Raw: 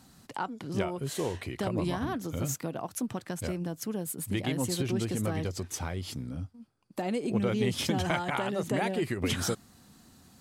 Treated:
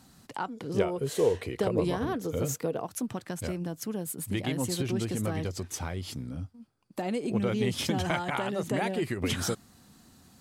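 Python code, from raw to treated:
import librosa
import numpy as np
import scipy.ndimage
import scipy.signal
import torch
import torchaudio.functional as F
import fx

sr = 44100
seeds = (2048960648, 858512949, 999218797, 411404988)

y = fx.peak_eq(x, sr, hz=460.0, db=13.5, octaves=0.37, at=(0.57, 2.84))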